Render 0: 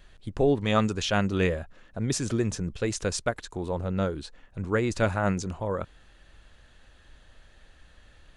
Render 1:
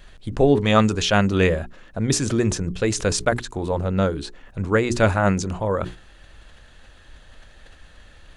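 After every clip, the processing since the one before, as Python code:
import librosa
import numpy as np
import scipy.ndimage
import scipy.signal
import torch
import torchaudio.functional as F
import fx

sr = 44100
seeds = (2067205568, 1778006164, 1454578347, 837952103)

y = fx.hum_notches(x, sr, base_hz=60, count=7)
y = fx.sustainer(y, sr, db_per_s=140.0)
y = y * librosa.db_to_amplitude(7.0)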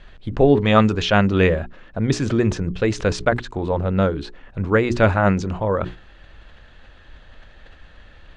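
y = scipy.signal.sosfilt(scipy.signal.butter(2, 3600.0, 'lowpass', fs=sr, output='sos'), x)
y = y * librosa.db_to_amplitude(2.0)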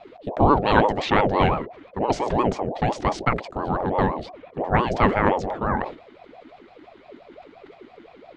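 y = fx.high_shelf(x, sr, hz=4900.0, db=-8.5)
y = fx.ring_lfo(y, sr, carrier_hz=510.0, swing_pct=45, hz=5.8)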